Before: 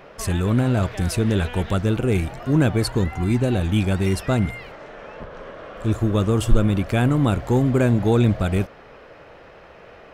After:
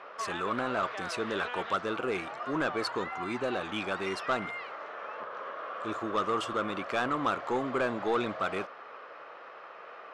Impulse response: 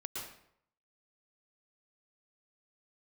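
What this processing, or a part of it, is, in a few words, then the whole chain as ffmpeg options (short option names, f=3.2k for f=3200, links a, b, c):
intercom: -af "highpass=460,lowpass=4.9k,equalizer=f=1.2k:t=o:w=0.56:g=10.5,asoftclip=type=tanh:threshold=-16.5dB,volume=-4dB"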